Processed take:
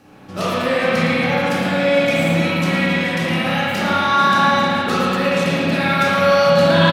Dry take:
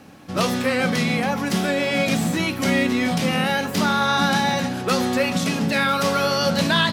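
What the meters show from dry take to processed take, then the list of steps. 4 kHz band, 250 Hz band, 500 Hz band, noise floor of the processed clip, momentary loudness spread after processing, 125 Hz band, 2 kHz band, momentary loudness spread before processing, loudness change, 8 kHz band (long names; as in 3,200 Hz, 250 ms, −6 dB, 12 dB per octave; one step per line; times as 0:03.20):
+1.5 dB, +2.0 dB, +7.0 dB, −32 dBFS, 6 LU, +4.5 dB, +4.5 dB, 4 LU, +4.0 dB, −4.5 dB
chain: on a send: repeating echo 112 ms, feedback 31%, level −9 dB
on the sum: spring reverb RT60 3.1 s, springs 30/53 ms, chirp 40 ms, DRR −9.5 dB
level −5 dB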